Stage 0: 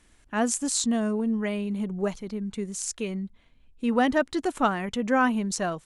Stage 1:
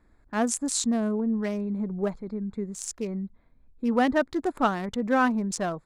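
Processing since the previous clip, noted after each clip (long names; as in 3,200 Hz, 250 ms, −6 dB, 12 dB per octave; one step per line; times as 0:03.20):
adaptive Wiener filter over 15 samples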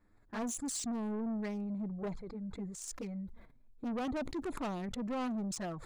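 flanger swept by the level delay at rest 10.4 ms, full sweep at −23 dBFS
soft clipping −29.5 dBFS, distortion −8 dB
level that may fall only so fast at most 68 dB per second
level −4 dB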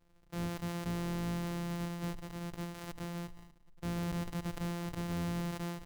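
samples sorted by size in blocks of 256 samples
single-tap delay 237 ms −19.5 dB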